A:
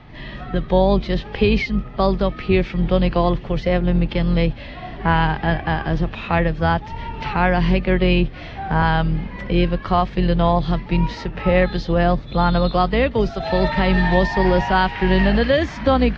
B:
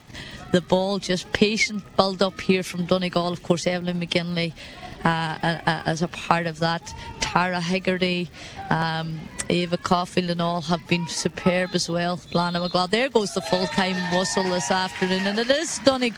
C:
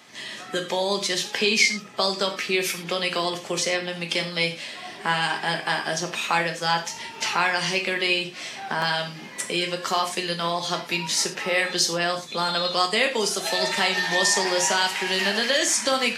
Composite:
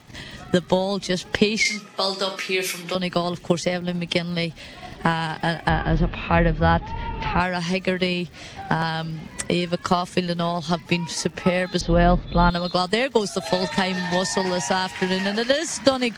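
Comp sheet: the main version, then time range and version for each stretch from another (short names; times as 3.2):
B
1.65–2.95 from C
5.69–7.4 from A
11.81–12.5 from A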